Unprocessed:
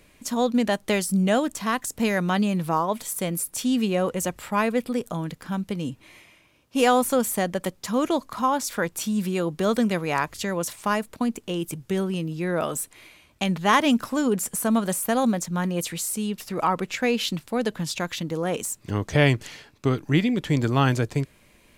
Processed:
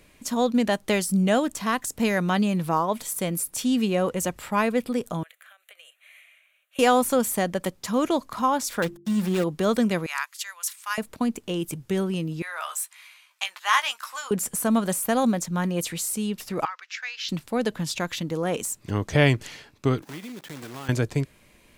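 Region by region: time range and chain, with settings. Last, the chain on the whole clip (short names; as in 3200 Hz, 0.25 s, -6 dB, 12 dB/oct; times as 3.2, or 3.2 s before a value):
5.23–6.79 steep high-pass 630 Hz 48 dB/oct + compressor 8:1, threshold -42 dBFS + fixed phaser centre 2200 Hz, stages 4
8.82–9.44 switching dead time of 0.21 ms + comb 5.7 ms, depth 34% + de-hum 49.11 Hz, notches 9
10.06–10.98 HPF 1200 Hz 24 dB/oct + high shelf 6800 Hz +6 dB + upward expander, over -38 dBFS
12.42–14.31 HPF 990 Hz 24 dB/oct + doubler 15 ms -8 dB
16.65–17.29 ladder high-pass 1300 Hz, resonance 40% + resonant high shelf 7300 Hz -9.5 dB, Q 3
20.02–20.89 block floating point 3-bit + Bessel high-pass 200 Hz + compressor 2.5:1, threshold -42 dBFS
whole clip: dry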